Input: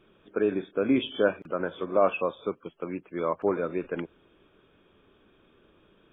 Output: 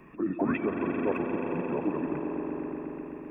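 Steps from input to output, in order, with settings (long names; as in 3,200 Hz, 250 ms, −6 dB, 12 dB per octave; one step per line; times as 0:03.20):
in parallel at 0 dB: brickwall limiter −19 dBFS, peak gain reduction 9.5 dB
on the sum: sound drawn into the spectrogram rise, 0:00.73–0:01.05, 860–2,000 Hz −20 dBFS
formants moved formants −5 semitones
on a send: echo that builds up and dies away 81 ms, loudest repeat 8, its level −13 dB
on the sum: time stretch by overlap-add 0.54×, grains 24 ms
multiband upward and downward compressor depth 40%
level −7 dB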